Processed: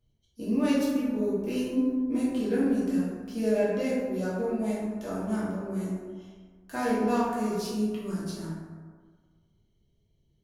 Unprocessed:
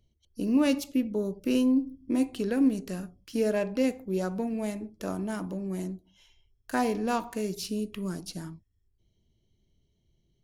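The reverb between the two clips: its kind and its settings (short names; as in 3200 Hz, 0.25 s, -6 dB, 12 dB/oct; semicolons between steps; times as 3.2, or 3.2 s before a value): plate-style reverb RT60 1.6 s, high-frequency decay 0.4×, DRR -9 dB; gain -9 dB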